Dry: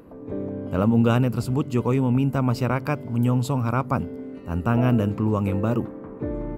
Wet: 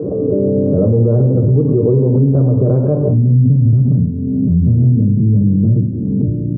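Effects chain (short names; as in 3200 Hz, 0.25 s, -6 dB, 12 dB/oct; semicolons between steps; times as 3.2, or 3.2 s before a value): recorder AGC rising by 10 dB/s; ladder low-pass 580 Hz, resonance 35%, from 3.08 s 270 Hz; reverb RT60 0.85 s, pre-delay 4 ms, DRR 5 dB; maximiser +11 dB; backwards sustainer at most 25 dB/s; gain -4 dB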